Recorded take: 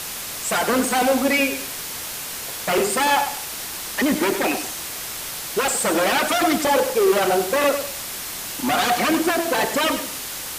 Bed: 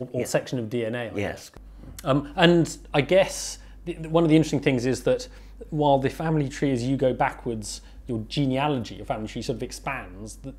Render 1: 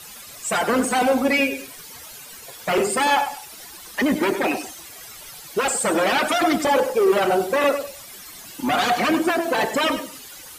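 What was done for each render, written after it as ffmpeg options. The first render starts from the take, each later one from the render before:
-af "afftdn=nr=14:nf=-31"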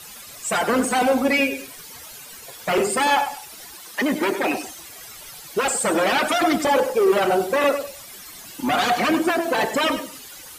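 -filter_complex "[0:a]asettb=1/sr,asplit=3[s0][s1][s2];[s0]atrim=end=3.744[s3];[s1]atrim=start=3.74:end=4.48,asetpts=PTS-STARTPTS,afade=t=in:d=0.004:c=qsin,afade=t=out:st=0.736:d=0.004:c=qsin,highpass=f=220:p=1[s4];[s2]atrim=start=4.476[s5];[s3][s4]acrossfade=d=0.004:c1=hsin:c2=qsin[s6];[s6][s5]acrossfade=d=0.004:c1=qsin:c2=hsin"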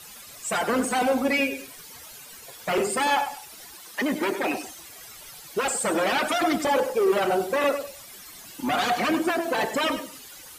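-af "volume=0.631"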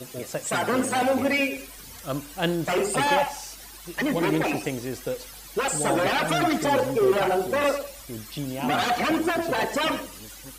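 -filter_complex "[1:a]volume=0.398[s0];[0:a][s0]amix=inputs=2:normalize=0"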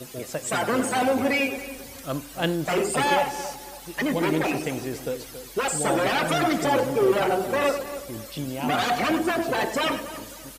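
-filter_complex "[0:a]asplit=2[s0][s1];[s1]adelay=277,lowpass=f=1600:p=1,volume=0.266,asplit=2[s2][s3];[s3]adelay=277,lowpass=f=1600:p=1,volume=0.36,asplit=2[s4][s5];[s5]adelay=277,lowpass=f=1600:p=1,volume=0.36,asplit=2[s6][s7];[s7]adelay=277,lowpass=f=1600:p=1,volume=0.36[s8];[s0][s2][s4][s6][s8]amix=inputs=5:normalize=0"

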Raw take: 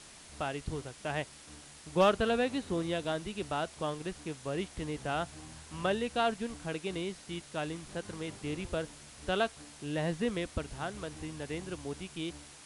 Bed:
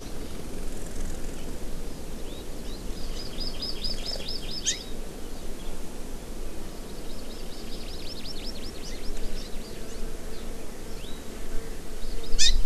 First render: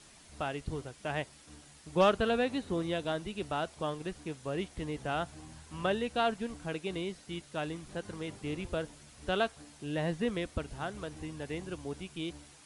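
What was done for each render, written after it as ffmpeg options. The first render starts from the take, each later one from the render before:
-af "afftdn=nr=6:nf=-53"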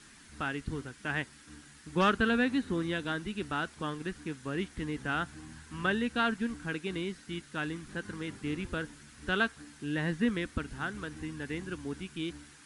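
-af "equalizer=f=250:t=o:w=0.67:g=7,equalizer=f=630:t=o:w=0.67:g=-10,equalizer=f=1600:t=o:w=0.67:g=9"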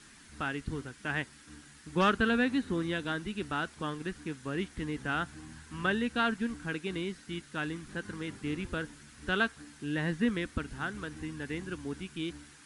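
-af anull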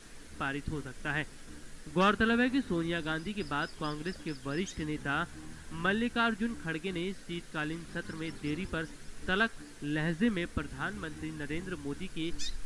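-filter_complex "[1:a]volume=0.126[s0];[0:a][s0]amix=inputs=2:normalize=0"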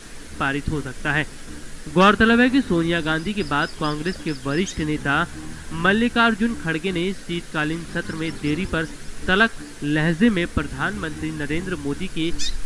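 -af "volume=3.98"

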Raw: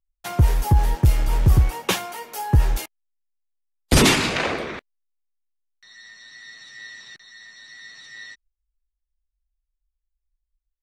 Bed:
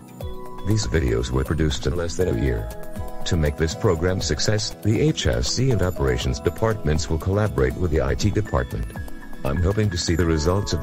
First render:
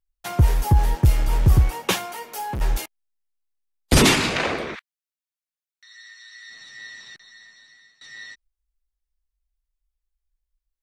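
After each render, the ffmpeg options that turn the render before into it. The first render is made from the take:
-filter_complex "[0:a]asplit=3[s0][s1][s2];[s0]afade=t=out:st=2.06:d=0.02[s3];[s1]volume=18.8,asoftclip=hard,volume=0.0531,afade=t=in:st=2.06:d=0.02,afade=t=out:st=2.6:d=0.02[s4];[s2]afade=t=in:st=2.6:d=0.02[s5];[s3][s4][s5]amix=inputs=3:normalize=0,asplit=3[s6][s7][s8];[s6]afade=t=out:st=4.74:d=0.02[s9];[s7]highpass=f=1200:w=0.5412,highpass=f=1200:w=1.3066,afade=t=in:st=4.74:d=0.02,afade=t=out:st=6.49:d=0.02[s10];[s8]afade=t=in:st=6.49:d=0.02[s11];[s9][s10][s11]amix=inputs=3:normalize=0,asplit=2[s12][s13];[s12]atrim=end=8.01,asetpts=PTS-STARTPTS,afade=t=out:st=7.09:d=0.92:silence=0.0841395[s14];[s13]atrim=start=8.01,asetpts=PTS-STARTPTS,afade=t=in:d=0.004:c=hsin:silence=0.0841395[s15];[s14][s15]concat=n=2:v=0:a=1"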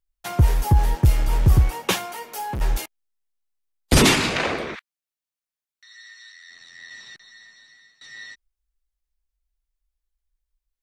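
-filter_complex "[0:a]asettb=1/sr,asplit=3[s0][s1][s2];[s0]atrim=end=6.324[s3];[s1]atrim=start=6.32:end=6.91,asetpts=PTS-STARTPTS,afade=t=in:d=0.004:c=qsin,afade=t=out:st=0.586:d=0.004:c=qsin,tremolo=f=85:d=0.75[s4];[s2]atrim=start=6.906[s5];[s3][s4]acrossfade=d=0.004:c1=hsin:c2=qsin[s6];[s6][s5]acrossfade=d=0.004:c1=qsin:c2=hsin"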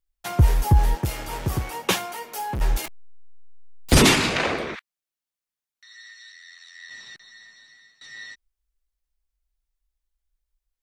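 -filter_complex "[0:a]asettb=1/sr,asplit=3[s0][s1][s2];[s0]atrim=end=0.984[s3];[s1]atrim=start=0.98:end=1.74,asetpts=PTS-STARTPTS,afade=t=in:d=0.004:c=qsin,afade=t=out:st=0.756:d=0.004:c=qsin,highpass=f=300:p=1[s4];[s2]atrim=start=1.736[s5];[s3][s4]acrossfade=d=0.004:c1=hsin:c2=qsin[s6];[s6][s5]acrossfade=d=0.004:c1=qsin:c2=hsin,asettb=1/sr,asplit=3[s7][s8][s9];[s7]atrim=end=2.844[s10];[s8]atrim=start=2.84:end=3.97,asetpts=PTS-STARTPTS,afade=t=in:d=0.004:c=qsin,afade=t=out:st=1.126:d=0.004:c=qsin,aeval=exprs='val(0)+0.5*0.0282*sgn(val(0))':c=same[s11];[s9]atrim=start=3.966[s12];[s10][s11]acrossfade=d=0.004:c1=hsin:c2=qsin[s13];[s13][s12]acrossfade=d=0.004:c1=qsin:c2=hsin,asettb=1/sr,asplit=3[s14][s15][s16];[s14]atrim=end=6.114[s17];[s15]atrim=start=6.11:end=6.89,asetpts=PTS-STARTPTS,afade=t=in:d=0.004:c=qsin,afade=t=out:st=0.776:d=0.004:c=qsin,highpass=1200[s18];[s16]atrim=start=6.886[s19];[s17][s18]acrossfade=d=0.004:c1=hsin:c2=qsin[s20];[s20][s19]acrossfade=d=0.004:c1=qsin:c2=hsin"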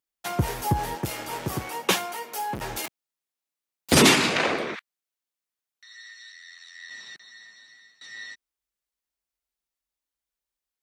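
-af "highpass=160"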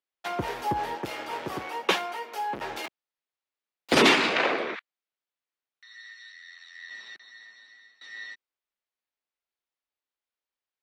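-filter_complex "[0:a]acrossover=split=250 4500:gain=0.178 1 0.158[s0][s1][s2];[s0][s1][s2]amix=inputs=3:normalize=0"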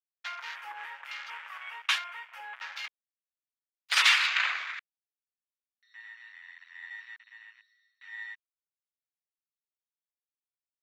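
-af "highpass=f=1300:w=0.5412,highpass=f=1300:w=1.3066,afwtdn=0.00562"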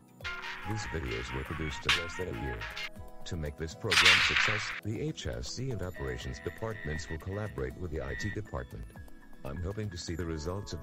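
-filter_complex "[1:a]volume=0.158[s0];[0:a][s0]amix=inputs=2:normalize=0"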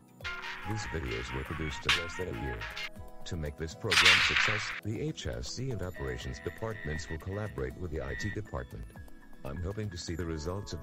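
-af anull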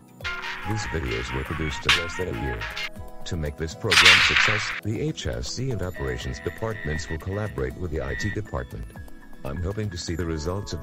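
-af "volume=2.51"

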